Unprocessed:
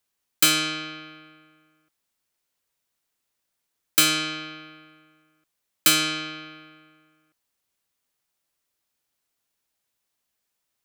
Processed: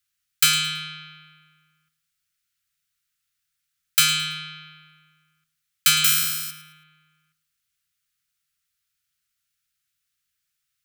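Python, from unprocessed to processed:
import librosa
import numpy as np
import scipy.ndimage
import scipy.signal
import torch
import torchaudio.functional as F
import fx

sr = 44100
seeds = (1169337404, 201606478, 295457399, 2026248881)

p1 = fx.resample_bad(x, sr, factor=8, down='none', up='zero_stuff', at=(6.04, 6.51))
p2 = scipy.signal.sosfilt(scipy.signal.cheby1(4, 1.0, [170.0, 1300.0], 'bandstop', fs=sr, output='sos'), p1)
p3 = p2 + fx.echo_feedback(p2, sr, ms=109, feedback_pct=29, wet_db=-15.0, dry=0)
y = p3 * librosa.db_to_amplitude(1.5)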